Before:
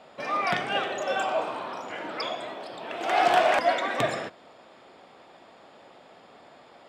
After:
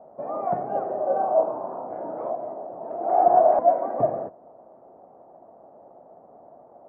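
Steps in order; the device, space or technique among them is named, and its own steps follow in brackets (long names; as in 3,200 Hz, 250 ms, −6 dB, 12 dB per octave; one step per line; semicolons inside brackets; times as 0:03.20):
0:00.86–0:02.32: double-tracking delay 31 ms −4 dB
0:03.10–0:03.50: notch filter 2,700 Hz, Q 8.1
under water (low-pass filter 880 Hz 24 dB per octave; parametric band 660 Hz +7 dB 0.55 octaves)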